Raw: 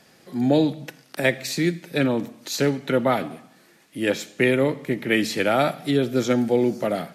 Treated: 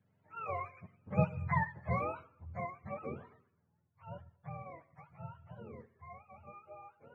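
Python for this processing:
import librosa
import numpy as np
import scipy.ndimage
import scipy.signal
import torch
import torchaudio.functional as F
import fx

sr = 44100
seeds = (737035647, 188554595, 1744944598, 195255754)

y = fx.octave_mirror(x, sr, pivot_hz=560.0)
y = fx.doppler_pass(y, sr, speed_mps=19, closest_m=6.0, pass_at_s=1.55)
y = y * 10.0 ** (-7.0 / 20.0)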